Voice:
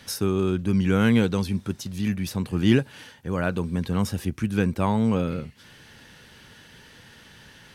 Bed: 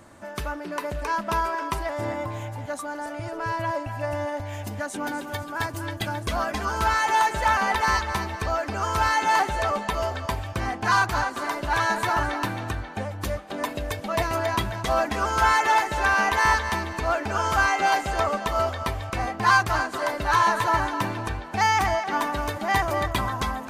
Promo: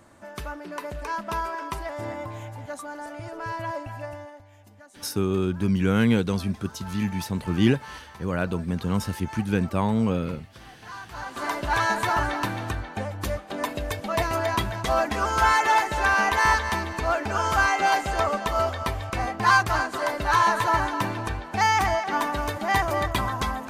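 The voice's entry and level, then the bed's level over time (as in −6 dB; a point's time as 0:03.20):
4.95 s, −1.0 dB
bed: 0:03.95 −4 dB
0:04.49 −19.5 dB
0:11.02 −19.5 dB
0:11.45 0 dB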